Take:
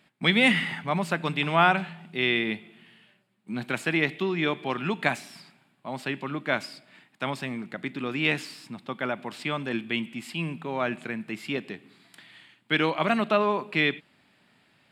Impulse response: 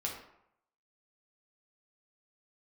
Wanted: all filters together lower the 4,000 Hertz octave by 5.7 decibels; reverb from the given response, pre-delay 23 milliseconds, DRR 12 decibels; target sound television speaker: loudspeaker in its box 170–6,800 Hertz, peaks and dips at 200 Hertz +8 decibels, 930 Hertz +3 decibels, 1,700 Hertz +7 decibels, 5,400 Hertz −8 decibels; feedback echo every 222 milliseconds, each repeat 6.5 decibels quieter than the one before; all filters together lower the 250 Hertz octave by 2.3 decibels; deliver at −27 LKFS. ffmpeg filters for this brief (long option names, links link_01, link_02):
-filter_complex "[0:a]equalizer=frequency=250:width_type=o:gain=-6.5,equalizer=frequency=4000:width_type=o:gain=-7.5,aecho=1:1:222|444|666|888|1110|1332:0.473|0.222|0.105|0.0491|0.0231|0.0109,asplit=2[link_01][link_02];[1:a]atrim=start_sample=2205,adelay=23[link_03];[link_02][link_03]afir=irnorm=-1:irlink=0,volume=-14dB[link_04];[link_01][link_04]amix=inputs=2:normalize=0,highpass=frequency=170:width=0.5412,highpass=frequency=170:width=1.3066,equalizer=frequency=200:width_type=q:width=4:gain=8,equalizer=frequency=930:width_type=q:width=4:gain=3,equalizer=frequency=1700:width_type=q:width=4:gain=7,equalizer=frequency=5400:width_type=q:width=4:gain=-8,lowpass=frequency=6800:width=0.5412,lowpass=frequency=6800:width=1.3066,volume=-0.5dB"